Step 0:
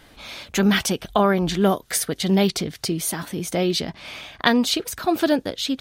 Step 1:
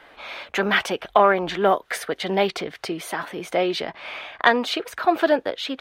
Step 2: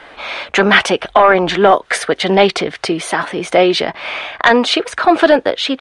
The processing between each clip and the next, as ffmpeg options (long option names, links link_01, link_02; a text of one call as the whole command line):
ffmpeg -i in.wav -filter_complex "[0:a]acontrast=49,acrossover=split=410 2900:gain=0.112 1 0.112[link_01][link_02][link_03];[link_01][link_02][link_03]amix=inputs=3:normalize=0" out.wav
ffmpeg -i in.wav -af "apsyclip=12.5dB,aresample=22050,aresample=44100,volume=-1.5dB" out.wav